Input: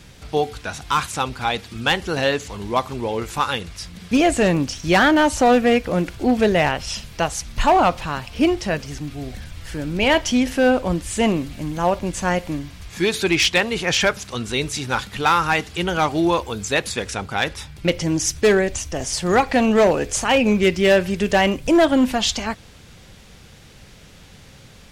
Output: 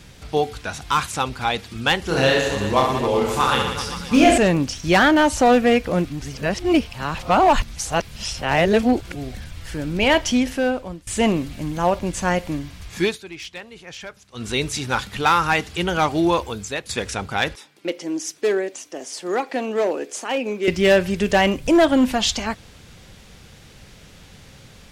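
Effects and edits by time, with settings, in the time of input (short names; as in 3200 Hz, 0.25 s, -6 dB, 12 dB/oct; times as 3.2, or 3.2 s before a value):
2.03–4.38 reverse bouncing-ball echo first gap 30 ms, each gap 1.3×, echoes 8, each echo -2 dB
6.05–9.15 reverse
10.32–11.07 fade out, to -22.5 dB
13.05–14.46 dip -18 dB, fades 0.13 s
16.43–16.89 fade out, to -14 dB
17.55–20.68 ladder high-pass 260 Hz, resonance 40%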